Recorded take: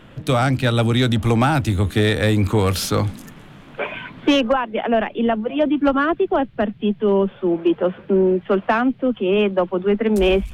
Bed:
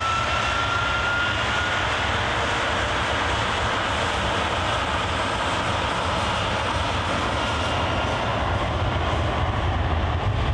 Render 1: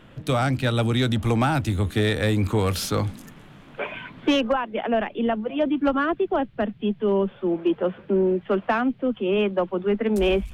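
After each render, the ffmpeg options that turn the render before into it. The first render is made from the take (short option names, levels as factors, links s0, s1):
-af "volume=0.596"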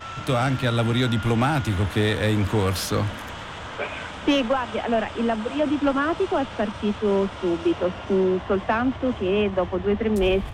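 -filter_complex "[1:a]volume=0.237[s0];[0:a][s0]amix=inputs=2:normalize=0"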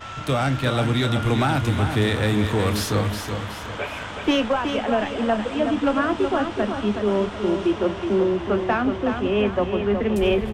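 -filter_complex "[0:a]asplit=2[s0][s1];[s1]adelay=29,volume=0.211[s2];[s0][s2]amix=inputs=2:normalize=0,aecho=1:1:371|742|1113|1484|1855:0.447|0.188|0.0788|0.0331|0.0139"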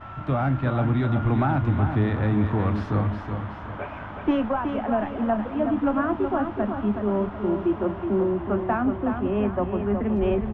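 -af "lowpass=1200,equalizer=f=470:t=o:w=0.47:g=-9"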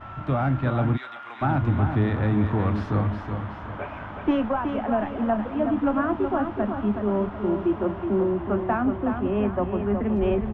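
-filter_complex "[0:a]asplit=3[s0][s1][s2];[s0]afade=t=out:st=0.96:d=0.02[s3];[s1]highpass=1300,afade=t=in:st=0.96:d=0.02,afade=t=out:st=1.41:d=0.02[s4];[s2]afade=t=in:st=1.41:d=0.02[s5];[s3][s4][s5]amix=inputs=3:normalize=0"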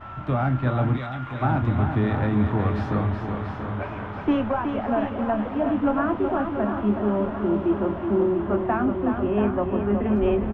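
-filter_complex "[0:a]asplit=2[s0][s1];[s1]adelay=24,volume=0.282[s2];[s0][s2]amix=inputs=2:normalize=0,asplit=2[s3][s4];[s4]aecho=0:1:683|1366|2049|2732|3415|4098|4781:0.335|0.194|0.113|0.0654|0.0379|0.022|0.0128[s5];[s3][s5]amix=inputs=2:normalize=0"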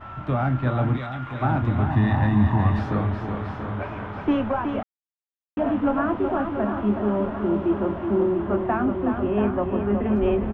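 -filter_complex "[0:a]asettb=1/sr,asplit=3[s0][s1][s2];[s0]atrim=end=1.904[s3];[s1]atrim=start=1.9:end=2.79,asetpts=PTS-STARTPTS,afade=t=in:d=0.004:c=qsin,afade=t=out:st=0.886:d=0.004:c=qsin,aecho=1:1:1.1:0.73,atrim=end_sample=39249[s4];[s2]atrim=start=2.786[s5];[s3][s4]acrossfade=d=0.004:c1=hsin:c2=qsin[s6];[s6][s5]acrossfade=d=0.004:c1=qsin:c2=hsin,asplit=3[s7][s8][s9];[s7]atrim=end=4.83,asetpts=PTS-STARTPTS,afade=t=out:st=4.826:d=0.004:c=hsin[s10];[s8]atrim=start=4.83:end=5.57,asetpts=PTS-STARTPTS,volume=0[s11];[s9]atrim=start=5.57,asetpts=PTS-STARTPTS,afade=t=in:d=0.004:c=hsin[s12];[s10][s11][s12]concat=n=3:v=0:a=1"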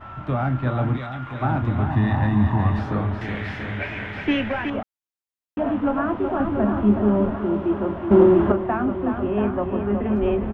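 -filter_complex "[0:a]asettb=1/sr,asplit=3[s0][s1][s2];[s0]atrim=end=3.214[s3];[s1]atrim=start=3.21:end=4.7,asetpts=PTS-STARTPTS,afade=t=in:d=0.004:c=qsin,afade=t=out:st=1.486:d=0.004:c=qsin,highshelf=f=1500:t=q:w=3:g=8.5[s4];[s2]atrim=start=4.696[s5];[s3][s4]acrossfade=d=0.004:c1=hsin:c2=qsin[s6];[s6][s5]acrossfade=d=0.004:c1=qsin:c2=hsin,asettb=1/sr,asplit=3[s7][s8][s9];[s7]atrim=end=6.404[s10];[s8]atrim=start=6.4:end=7.36,asetpts=PTS-STARTPTS,afade=t=in:d=0.004:c=qsin,afade=t=out:st=0.956:d=0.004:c=qsin,lowshelf=f=340:g=7.5[s11];[s9]atrim=start=7.356[s12];[s10][s11]acrossfade=d=0.004:c1=hsin:c2=qsin[s13];[s13][s12]acrossfade=d=0.004:c1=qsin:c2=hsin,asplit=3[s14][s15][s16];[s14]atrim=end=8.112[s17];[s15]atrim=start=8.108:end=8.522,asetpts=PTS-STARTPTS,volume=2.51[s18];[s16]atrim=start=8.518[s19];[s17][s18]acrossfade=d=0.004:c1=hsin:c2=hsin[s20];[s20][s19]acrossfade=d=0.004:c1=hsin:c2=hsin"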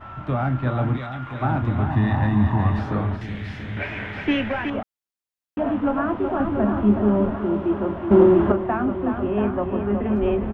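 -filter_complex "[0:a]asettb=1/sr,asplit=3[s0][s1][s2];[s0]atrim=end=3.164[s3];[s1]atrim=start=3.16:end=3.77,asetpts=PTS-STARTPTS,afade=t=in:d=0.004:c=qsin,afade=t=out:st=0.606:d=0.004:c=qsin,acrossover=split=270|3000[s4][s5][s6];[s5]acompressor=threshold=0.0112:ratio=6:attack=3.2:release=140:knee=2.83:detection=peak[s7];[s4][s7][s6]amix=inputs=3:normalize=0[s8];[s2]atrim=start=3.766[s9];[s3][s8]acrossfade=d=0.004:c1=hsin:c2=qsin[s10];[s10][s9]acrossfade=d=0.004:c1=qsin:c2=hsin"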